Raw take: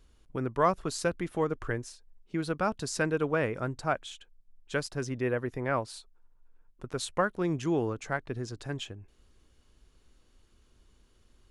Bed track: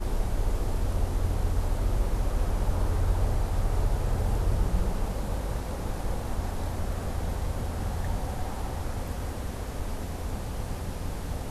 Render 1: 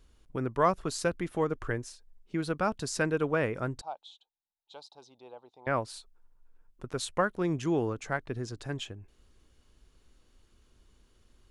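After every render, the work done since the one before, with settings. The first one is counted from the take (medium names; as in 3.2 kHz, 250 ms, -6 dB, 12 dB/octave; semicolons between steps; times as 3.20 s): 3.81–5.67 s: two resonant band-passes 1.8 kHz, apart 2.2 oct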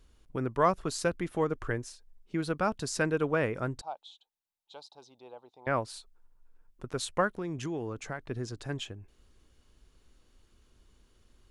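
7.36–8.31 s: compression, threshold -31 dBFS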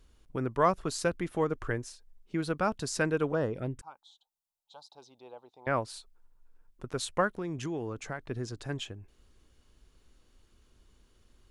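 3.32–4.90 s: touch-sensitive phaser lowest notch 310 Hz, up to 2.3 kHz, full sweep at -25 dBFS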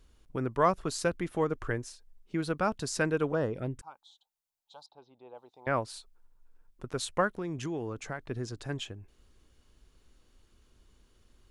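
4.86–5.35 s: distance through air 340 m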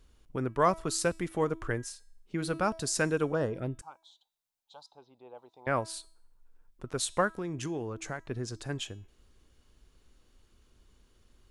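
de-hum 325.4 Hz, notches 40; dynamic bell 9.5 kHz, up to +7 dB, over -57 dBFS, Q 0.71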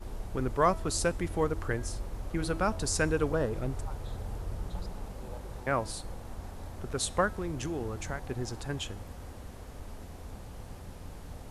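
add bed track -11 dB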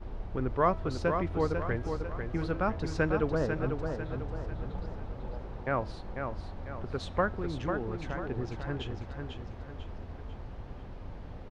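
distance through air 260 m; feedback delay 496 ms, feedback 43%, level -6 dB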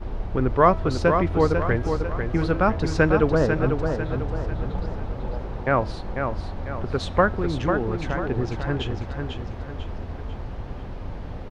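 trim +9.5 dB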